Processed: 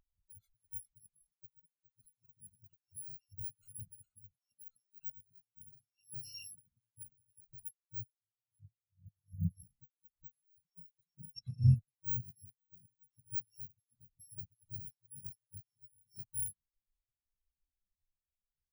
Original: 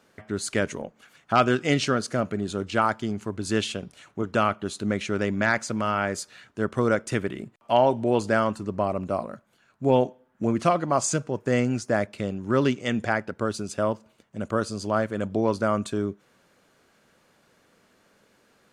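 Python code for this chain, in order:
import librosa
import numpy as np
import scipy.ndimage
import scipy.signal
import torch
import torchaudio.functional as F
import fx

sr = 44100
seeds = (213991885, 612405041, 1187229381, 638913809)

y = fx.bit_reversed(x, sr, seeds[0], block=128)
y = fx.bass_treble(y, sr, bass_db=13, treble_db=4, at=(8.19, 9.3))
y = y + 10.0 ** (-4.0 / 20.0) * np.pad(y, (int(412 * sr / 1000.0), 0))[:len(y)]
y = fx.dmg_noise_colour(y, sr, seeds[1], colour='pink', level_db=-45.0)
y = fx.peak_eq(y, sr, hz=88.0, db=-7.0, octaves=2.2, at=(4.4, 5.03))
y = fx.lowpass(y, sr, hz=6400.0, slope=12, at=(11.35, 11.76))
y = np.clip(y, -10.0 ** (-15.5 / 20.0), 10.0 ** (-15.5 / 20.0))
y = fx.over_compress(y, sr, threshold_db=-29.0, ratio=-0.5)
y = fx.spectral_expand(y, sr, expansion=4.0)
y = F.gain(torch.from_numpy(y), -4.0).numpy()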